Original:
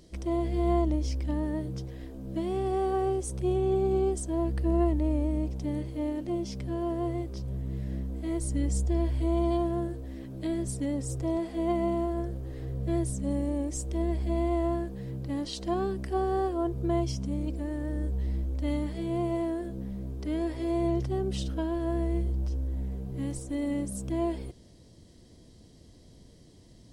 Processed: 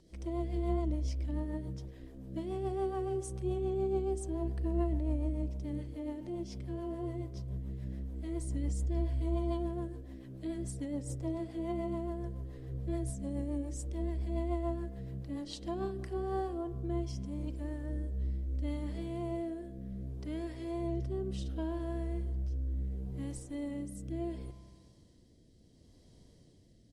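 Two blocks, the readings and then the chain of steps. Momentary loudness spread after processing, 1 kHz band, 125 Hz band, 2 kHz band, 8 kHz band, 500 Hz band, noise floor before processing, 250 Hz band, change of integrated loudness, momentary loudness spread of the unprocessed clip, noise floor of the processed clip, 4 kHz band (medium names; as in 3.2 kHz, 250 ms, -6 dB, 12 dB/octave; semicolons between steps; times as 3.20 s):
8 LU, -9.0 dB, -5.0 dB, -8.5 dB, -9.0 dB, -7.5 dB, -54 dBFS, -7.5 dB, -6.5 dB, 8 LU, -61 dBFS, -8.5 dB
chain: vibrato 2.9 Hz 9.6 cents; resampled via 32 kHz; spring tank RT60 1.6 s, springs 31 ms, chirp 60 ms, DRR 12 dB; rotary cabinet horn 7 Hz, later 0.7 Hz, at 15.60 s; trim -6 dB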